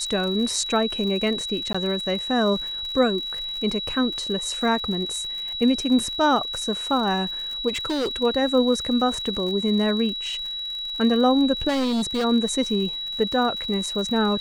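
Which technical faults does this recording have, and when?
crackle 70/s -31 dBFS
tone 3900 Hz -28 dBFS
1.73–1.75 gap 15 ms
7.68–8.16 clipped -21.5 dBFS
11.68–12.25 clipped -20.5 dBFS

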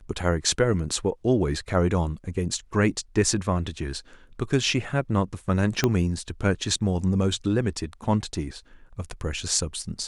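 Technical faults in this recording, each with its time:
5.84 pop -7 dBFS

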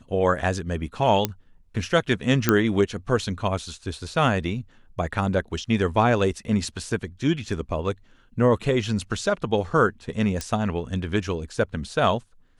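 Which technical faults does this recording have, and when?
1.25 pop -6 dBFS
2.49 pop -3 dBFS
10.41 pop -14 dBFS

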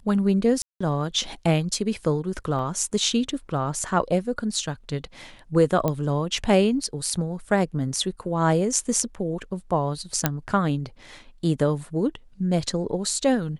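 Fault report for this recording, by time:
0.62–0.81 gap 0.185 s
2.59 gap 2.1 ms
5.88 pop -11 dBFS
10.26 pop -3 dBFS

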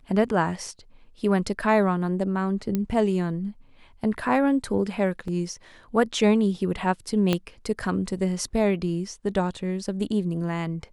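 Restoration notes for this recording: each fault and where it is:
2.75 pop -13 dBFS
5.28 gap 2.5 ms
7.33 pop -9 dBFS

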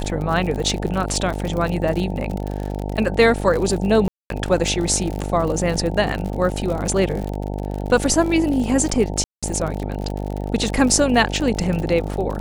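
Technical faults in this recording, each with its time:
buzz 50 Hz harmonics 18 -26 dBFS
crackle 63/s -25 dBFS
4.08–4.3 gap 0.222 s
9.24–9.43 gap 0.186 s

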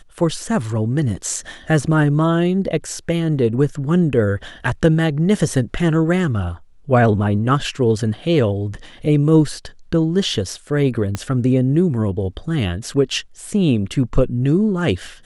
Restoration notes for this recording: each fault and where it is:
11.15 pop -9 dBFS

